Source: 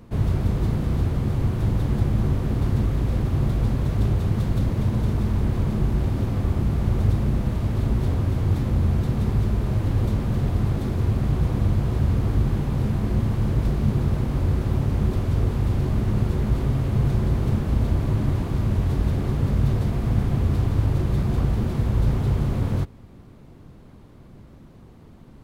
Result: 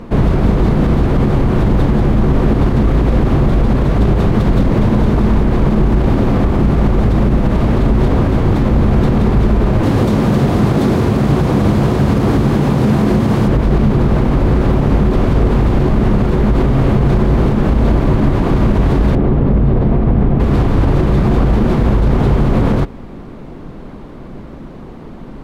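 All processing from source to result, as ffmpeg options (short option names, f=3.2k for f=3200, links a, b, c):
-filter_complex "[0:a]asettb=1/sr,asplit=3[a][b][c];[a]atrim=end=9.834[d];[b]atrim=start=9.83:end=13.48,asetpts=PTS-STARTPTS,afade=t=in:d=0.004:c=qsin,afade=t=out:st=3.646:d=0.004:c=qsin,highpass=95,bass=f=250:g=1,treble=f=4k:g=7[e];[c]atrim=start=13.476[f];[d][e]acrossfade=d=0.004:c1=hsin:c2=qsin[g];[g][f]acrossfade=d=0.004:c1=qsin:c2=hsin,asettb=1/sr,asplit=3[h][i][j];[h]atrim=end=19.154[k];[i]atrim=start=19.15:end=20.4,asetpts=PTS-STARTPTS,afade=t=in:d=0.004:c=qsin,afade=t=out:st=1.246:d=0.004:c=qsin,lowpass=2.2k,equalizer=f=1.6k:t=o:w=2:g=-6[l];[j]atrim=start=20.396[m];[k][l]acrossfade=d=0.004:c1=hsin:c2=qsin[n];[n][m]acrossfade=d=0.004:c1=qsin:c2=hsin,lowpass=f=2k:p=1,equalizer=f=92:t=o:w=1.2:g=-12.5,alimiter=level_in=22dB:limit=-1dB:release=50:level=0:latency=1,volume=-3dB"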